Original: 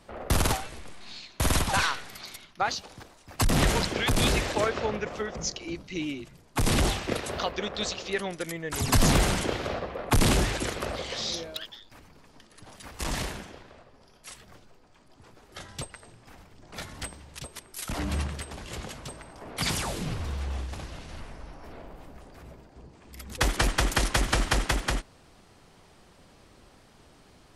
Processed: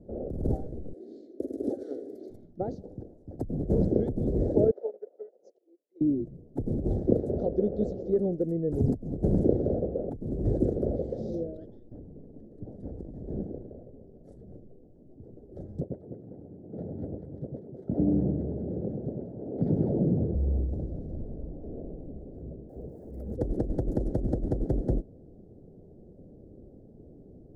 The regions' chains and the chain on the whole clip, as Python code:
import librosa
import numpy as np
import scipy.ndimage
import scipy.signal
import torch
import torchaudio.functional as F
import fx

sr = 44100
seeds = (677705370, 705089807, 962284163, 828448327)

y = fx.chain(x, sr, fx.over_compress(threshold_db=-28.0, ratio=-0.5),
    fx.highpass_res(hz=300.0, q=1.7),
    fx.fixed_phaser(hz=400.0, stages=4), at=(0.93, 2.3))
y = fx.chain(y, sr, fx.bessel_highpass(hz=670.0, order=6),
    fx.high_shelf(hz=3500.0, db=-7.5),
    fx.upward_expand(threshold_db=-51.0, expansion=2.5), at=(4.71, 6.01))
y = fx.chain(y, sr, fx.halfwave_gain(db=-3.0),
    fx.lowpass(hz=2900.0, slope=6),
    fx.over_compress(threshold_db=-41.0, ratio=-1.0), at=(11.55, 14.29))
y = fx.chain(y, sr, fx.bandpass_edges(low_hz=120.0, high_hz=2400.0),
    fx.echo_alternate(ms=101, hz=1100.0, feedback_pct=71, wet_db=-2.0), at=(15.8, 20.35))
y = fx.chain(y, sr, fx.crossing_spikes(level_db=-37.0),
    fx.band_shelf(hz=1000.0, db=8.5, octaves=2.5), at=(22.69, 23.35))
y = scipy.signal.sosfilt(scipy.signal.cheby2(4, 40, 1000.0, 'lowpass', fs=sr, output='sos'), y)
y = fx.over_compress(y, sr, threshold_db=-28.0, ratio=-0.5)
y = fx.low_shelf(y, sr, hz=79.0, db=-6.0)
y = y * 10.0 ** (6.0 / 20.0)